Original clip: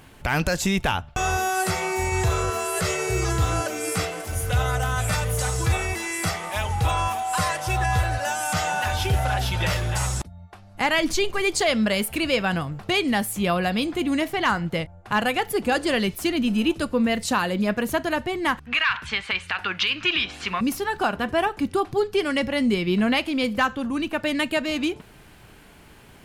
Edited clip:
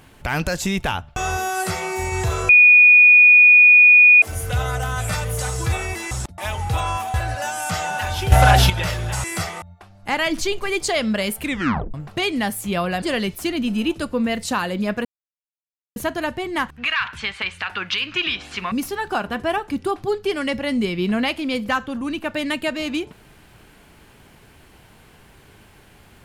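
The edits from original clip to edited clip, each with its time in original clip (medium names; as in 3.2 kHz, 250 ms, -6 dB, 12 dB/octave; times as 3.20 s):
2.49–4.22 s: bleep 2.46 kHz -6.5 dBFS
6.11–6.49 s: swap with 10.07–10.34 s
7.25–7.97 s: delete
9.15–9.53 s: gain +11.5 dB
12.15 s: tape stop 0.51 s
13.74–15.82 s: delete
17.85 s: insert silence 0.91 s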